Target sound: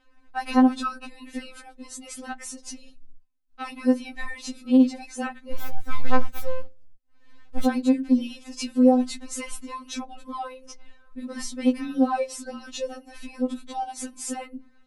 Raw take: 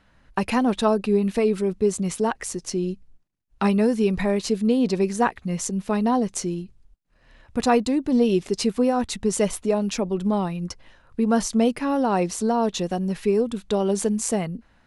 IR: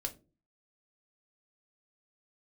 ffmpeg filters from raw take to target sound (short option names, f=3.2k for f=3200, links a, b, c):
-filter_complex "[0:a]asettb=1/sr,asplit=3[a][b][c];[a]atrim=end=5.524[d];[b]atrim=start=5.52:end=7.65,asetpts=PTS-STARTPTS,afade=t=in:d=0.004:c=qsin,afade=t=out:st=2.126:d=0.004:c=qsin,aeval=exprs='abs(val(0))':c=same[e];[c]atrim=start=7.646[f];[d][e]acrossfade=d=0.004:c1=hsin:c2=qsin[g];[g][f]acrossfade=d=0.004:c1=qsin:c2=hsin,asplit=2[h][i];[1:a]atrim=start_sample=2205,lowpass=4.6k[j];[i][j]afir=irnorm=-1:irlink=0,volume=-12dB[k];[h][k]amix=inputs=2:normalize=0,afftfilt=real='re*3.46*eq(mod(b,12),0)':imag='im*3.46*eq(mod(b,12),0)':win_size=2048:overlap=0.75,volume=-3dB"